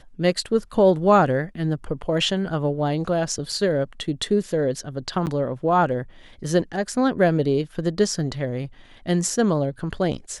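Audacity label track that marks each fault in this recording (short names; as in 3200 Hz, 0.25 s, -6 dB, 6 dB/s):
3.520000	3.520000	gap 3 ms
5.260000	5.270000	gap 9 ms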